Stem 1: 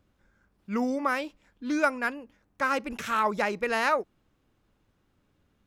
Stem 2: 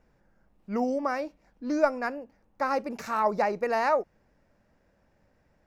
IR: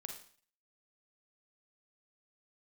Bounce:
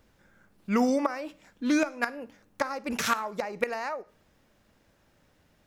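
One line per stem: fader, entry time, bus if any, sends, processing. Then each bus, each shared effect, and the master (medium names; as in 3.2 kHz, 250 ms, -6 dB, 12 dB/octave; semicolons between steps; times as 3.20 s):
-0.5 dB, 0.00 s, send -8 dB, high-pass 54 Hz; inverted gate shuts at -17 dBFS, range -31 dB
-2.5 dB, 0.00 s, send -12.5 dB, compression 10:1, threshold -31 dBFS, peak gain reduction 15.5 dB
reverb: on, RT60 0.45 s, pre-delay 37 ms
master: treble shelf 2.1 kHz +8 dB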